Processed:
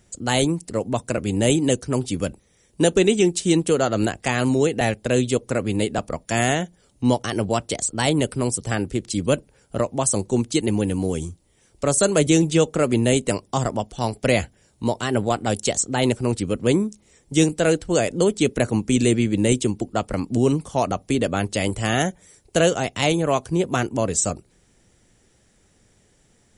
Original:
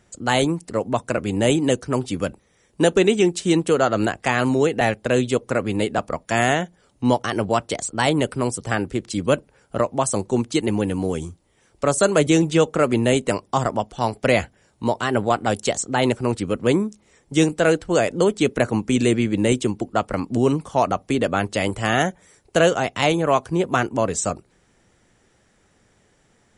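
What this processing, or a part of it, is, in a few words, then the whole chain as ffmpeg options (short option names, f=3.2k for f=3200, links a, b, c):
smiley-face EQ: -af "lowshelf=f=89:g=5,equalizer=f=1.2k:t=o:w=1.7:g=-5.5,highshelf=f=5.8k:g=6.5"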